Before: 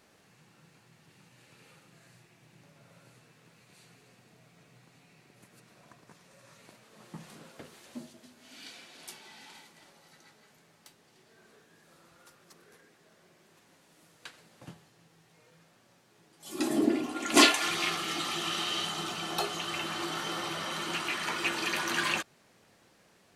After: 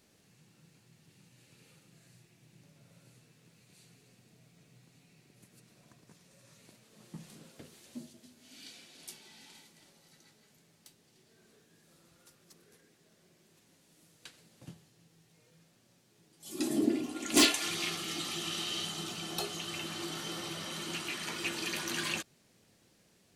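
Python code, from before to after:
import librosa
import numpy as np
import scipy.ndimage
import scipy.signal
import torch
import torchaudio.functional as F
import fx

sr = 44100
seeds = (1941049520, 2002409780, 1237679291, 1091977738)

p1 = fx.peak_eq(x, sr, hz=1100.0, db=-10.5, octaves=2.5)
p2 = (np.mod(10.0 ** (13.5 / 20.0) * p1 + 1.0, 2.0) - 1.0) / 10.0 ** (13.5 / 20.0)
p3 = p1 + (p2 * librosa.db_to_amplitude(-5.0))
y = p3 * librosa.db_to_amplitude(-3.5)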